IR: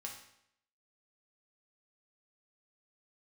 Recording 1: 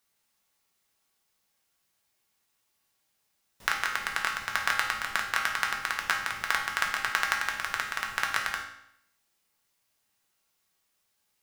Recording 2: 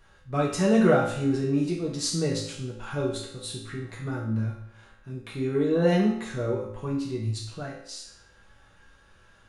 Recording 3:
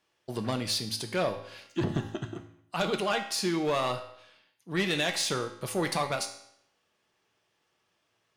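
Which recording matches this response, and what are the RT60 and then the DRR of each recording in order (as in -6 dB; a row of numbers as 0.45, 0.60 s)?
1; 0.75, 0.75, 0.75 s; -0.5, -5.0, 5.0 dB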